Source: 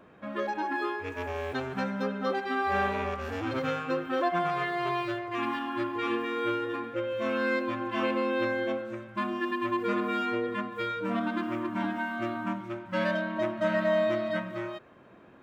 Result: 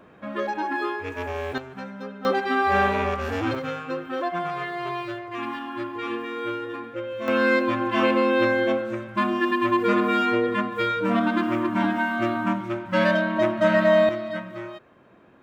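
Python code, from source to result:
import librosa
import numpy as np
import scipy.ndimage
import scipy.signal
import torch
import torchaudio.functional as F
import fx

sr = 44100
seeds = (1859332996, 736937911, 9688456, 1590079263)

y = fx.gain(x, sr, db=fx.steps((0.0, 4.0), (1.58, -5.0), (2.25, 7.0), (3.55, 0.0), (7.28, 8.0), (14.09, 0.0)))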